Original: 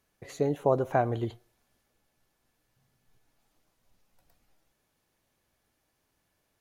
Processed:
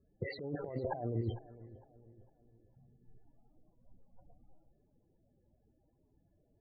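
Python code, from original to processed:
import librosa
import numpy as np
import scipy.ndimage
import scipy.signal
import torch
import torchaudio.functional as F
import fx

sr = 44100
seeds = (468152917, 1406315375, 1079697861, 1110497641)

p1 = fx.peak_eq(x, sr, hz=8200.0, db=-11.5, octaves=0.89)
p2 = fx.spec_topn(p1, sr, count=16)
p3 = fx.over_compress(p2, sr, threshold_db=-38.0, ratio=-1.0)
p4 = p3 + fx.echo_feedback(p3, sr, ms=455, feedback_pct=44, wet_db=-18.0, dry=0)
y = fx.env_lowpass(p4, sr, base_hz=510.0, full_db=-34.5)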